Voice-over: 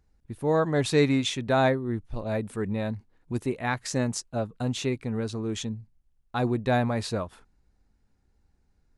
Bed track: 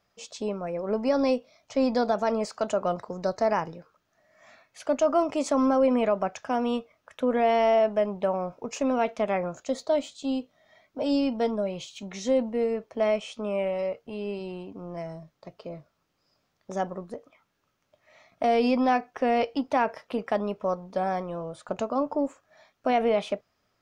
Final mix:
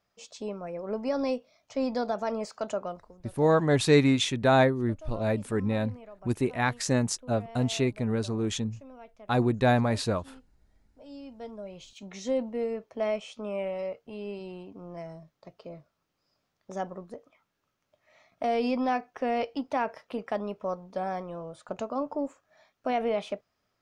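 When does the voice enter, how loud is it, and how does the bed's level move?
2.95 s, +1.5 dB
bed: 2.77 s -5 dB
3.30 s -23.5 dB
10.95 s -23.5 dB
12.10 s -4.5 dB

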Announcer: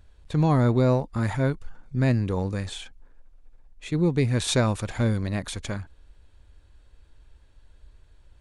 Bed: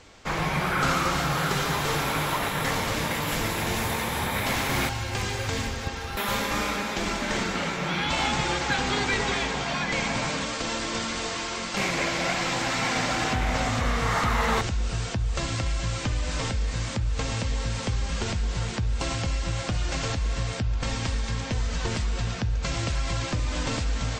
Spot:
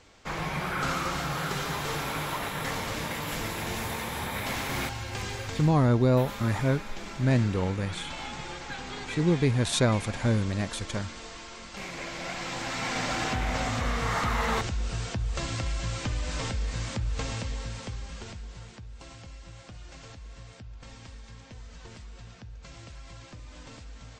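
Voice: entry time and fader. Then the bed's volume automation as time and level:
5.25 s, -1.5 dB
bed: 5.37 s -5.5 dB
5.90 s -12.5 dB
11.81 s -12.5 dB
13.12 s -3.5 dB
17.21 s -3.5 dB
18.88 s -18 dB

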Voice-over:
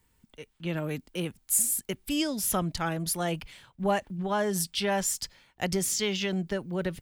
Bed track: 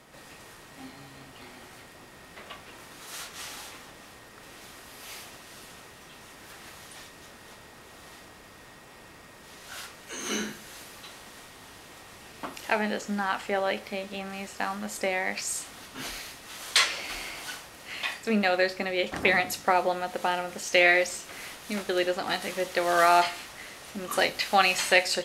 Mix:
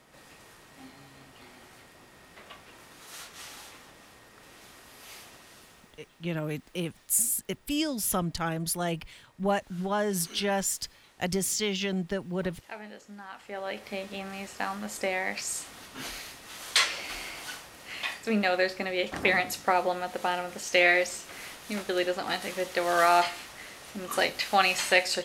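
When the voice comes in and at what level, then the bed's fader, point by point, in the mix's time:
5.60 s, -0.5 dB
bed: 5.45 s -4.5 dB
6.36 s -15.5 dB
13.30 s -15.5 dB
13.94 s -1.5 dB

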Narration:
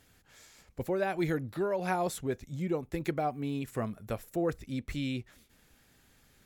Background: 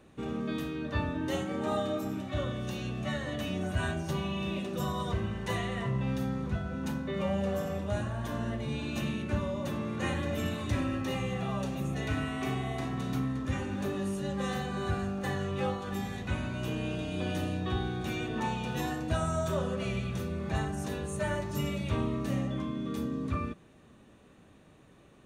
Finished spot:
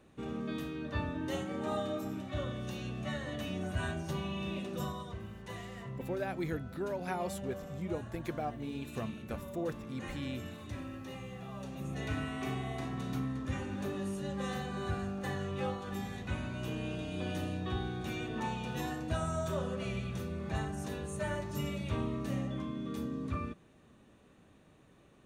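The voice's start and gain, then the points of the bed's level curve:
5.20 s, -6.0 dB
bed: 4.83 s -4 dB
5.09 s -11.5 dB
11.50 s -11.5 dB
12.03 s -4 dB

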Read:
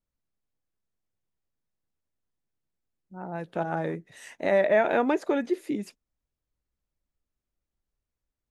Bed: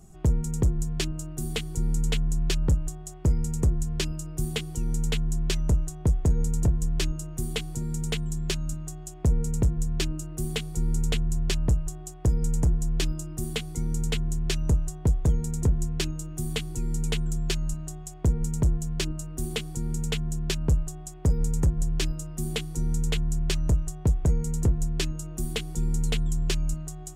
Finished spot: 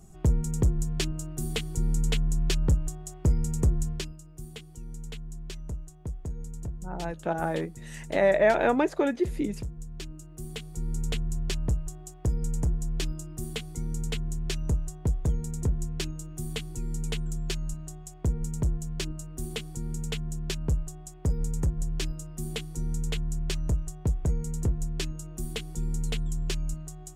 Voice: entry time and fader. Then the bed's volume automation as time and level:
3.70 s, +0.5 dB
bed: 3.87 s -0.5 dB
4.17 s -13 dB
9.89 s -13 dB
11.11 s -4 dB

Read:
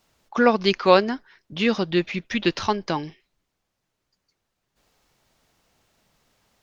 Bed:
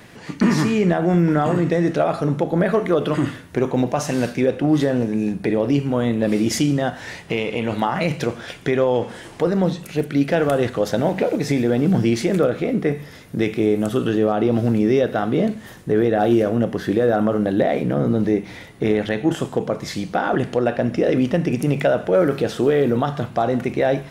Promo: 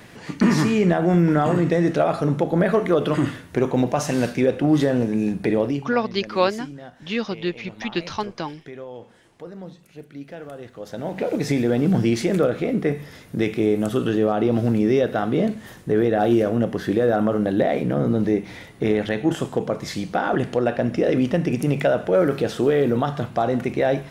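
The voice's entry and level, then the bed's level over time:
5.50 s, -4.0 dB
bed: 5.62 s -0.5 dB
5.98 s -18.5 dB
10.69 s -18.5 dB
11.37 s -1.5 dB

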